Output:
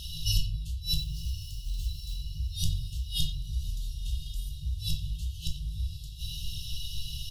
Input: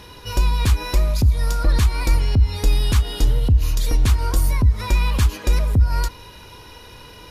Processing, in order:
bit reduction 11 bits
gate with flip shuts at −15 dBFS, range −25 dB
far-end echo of a speakerphone 90 ms, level −8 dB
0:00.97–0:02.15: floating-point word with a short mantissa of 2 bits
on a send: feedback delay with all-pass diffusion 1,064 ms, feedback 54%, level −12 dB
on the sum: rectangular room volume 310 cubic metres, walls furnished, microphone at 1.7 metres
brick-wall band-stop 170–2,600 Hz
level +3 dB

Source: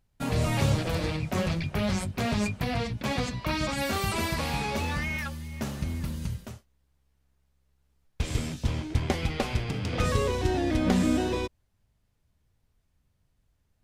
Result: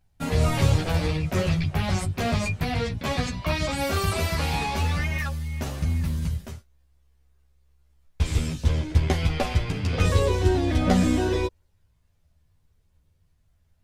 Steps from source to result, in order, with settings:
multi-voice chorus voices 6, 0.18 Hz, delay 12 ms, depth 1.5 ms
level +5.5 dB

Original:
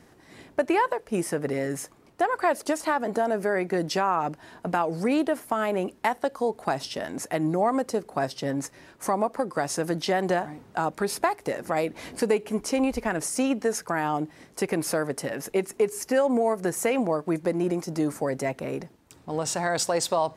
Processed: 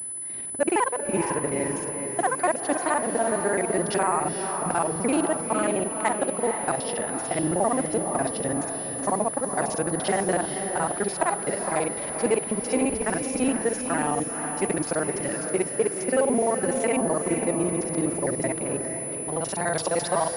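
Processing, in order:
reversed piece by piece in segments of 42 ms
pitch vibrato 1.4 Hz 45 cents
on a send: feedback delay with all-pass diffusion 480 ms, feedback 44%, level −6 dB
on the sum: switching amplifier with a slow clock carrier 10,000 Hz

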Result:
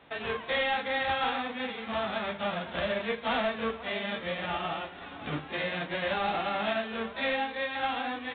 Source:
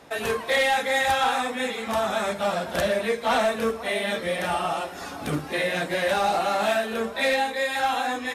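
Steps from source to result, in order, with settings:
spectral envelope flattened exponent 0.6
level −6.5 dB
mu-law 64 kbit/s 8,000 Hz

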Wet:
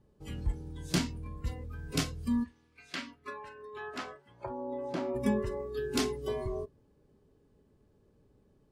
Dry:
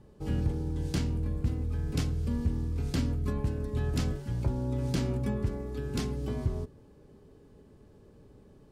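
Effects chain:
noise reduction from a noise print of the clip's start 17 dB
0:02.43–0:05.14: resonant band-pass 2,600 Hz → 670 Hz, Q 1.1
level +6.5 dB

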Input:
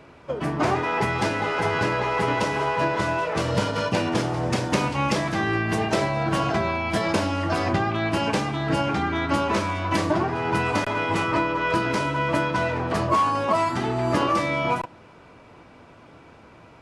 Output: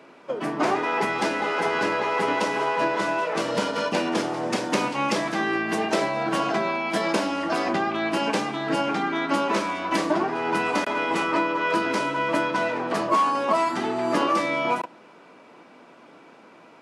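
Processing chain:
high-pass filter 200 Hz 24 dB per octave

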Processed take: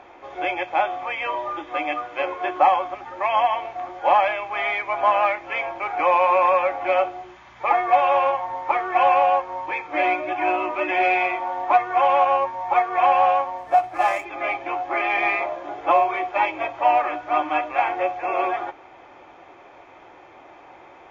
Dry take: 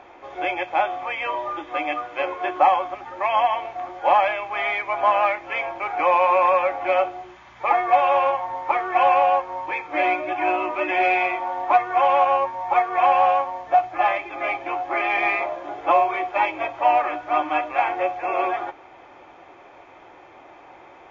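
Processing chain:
0:13.58–0:14.25: running median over 9 samples
Opus 128 kbit/s 48,000 Hz

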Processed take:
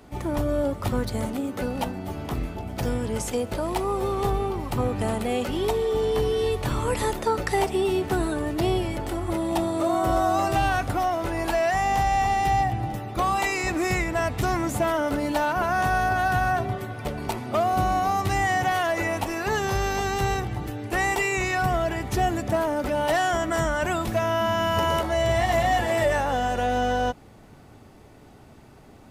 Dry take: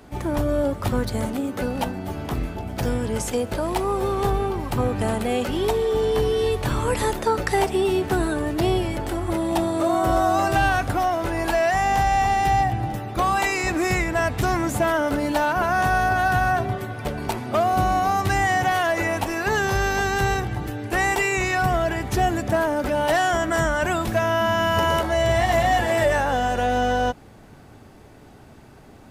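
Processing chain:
notch filter 1,600 Hz, Q 14
level −2.5 dB

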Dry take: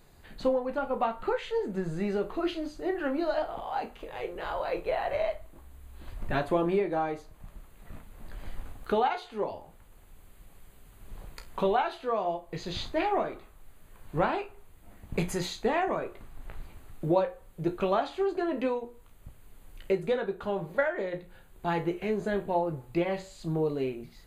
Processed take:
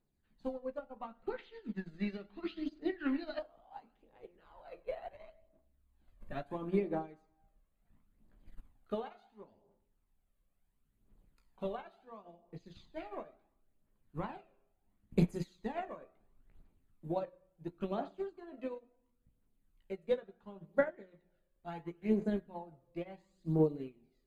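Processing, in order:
parametric band 230 Hz +9 dB 1.1 octaves
mains-hum notches 60/120/180/240 Hz
convolution reverb RT60 0.95 s, pre-delay 35 ms, DRR 12.5 dB
phase shifter 0.72 Hz, delay 1.9 ms, feedback 47%
0:01.30–0:03.39: octave-band graphic EQ 125/250/500/2,000/4,000/8,000 Hz −4/+7/−5/+8/+12/−9 dB
expander for the loud parts 2.5 to 1, over −32 dBFS
level −6.5 dB

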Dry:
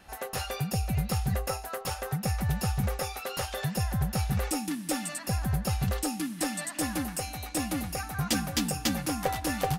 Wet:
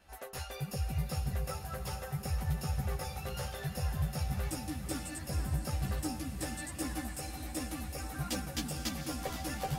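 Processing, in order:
feedback delay with all-pass diffusion 474 ms, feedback 63%, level −8.5 dB
multi-voice chorus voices 6, 0.71 Hz, delay 14 ms, depth 1.9 ms
level −5.5 dB

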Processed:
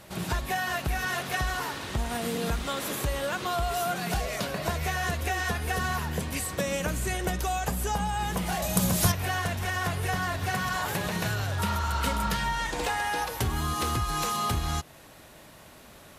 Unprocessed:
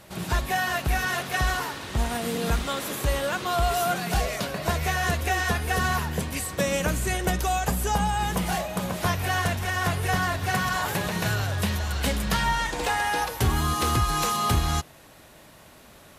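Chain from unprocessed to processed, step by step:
downward compressor 2.5 to 1, threshold −27 dBFS, peak gain reduction 6.5 dB
0:08.62–0:09.12: bass and treble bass +9 dB, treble +14 dB
0:11.61–0:12.30: healed spectral selection 560–1,400 Hz after

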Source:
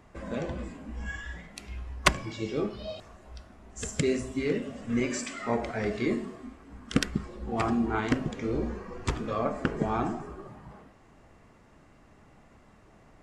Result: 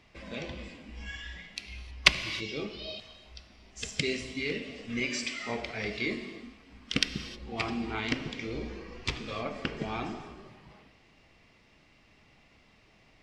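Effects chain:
flat-topped bell 3,400 Hz +13.5 dB
reverb whose tail is shaped and stops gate 340 ms flat, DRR 11.5 dB
level −7 dB

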